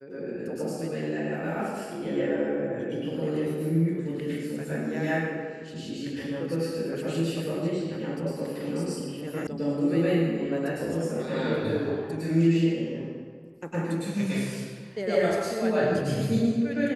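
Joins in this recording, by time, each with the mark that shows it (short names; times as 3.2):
9.47 sound cut off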